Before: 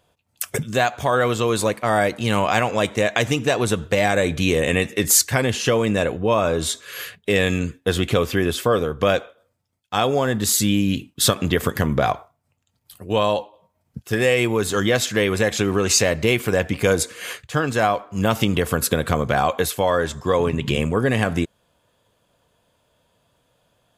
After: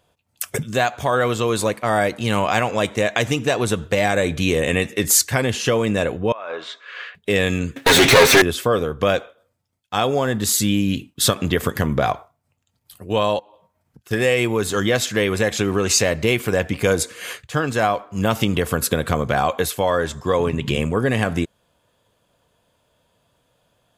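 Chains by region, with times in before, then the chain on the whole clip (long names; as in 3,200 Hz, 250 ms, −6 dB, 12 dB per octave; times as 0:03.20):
0:06.32–0:07.15: band-pass filter 800–2,500 Hz + high-frequency loss of the air 72 metres + compressor whose output falls as the input rises −30 dBFS
0:07.76–0:08.42: lower of the sound and its delayed copy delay 0.49 ms + mid-hump overdrive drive 34 dB, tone 5,300 Hz, clips at −5 dBFS + comb filter 7.4 ms, depth 61%
0:13.39–0:14.11: parametric band 1,500 Hz +4.5 dB 0.95 octaves + downward compressor 12 to 1, threshold −42 dBFS
whole clip: no processing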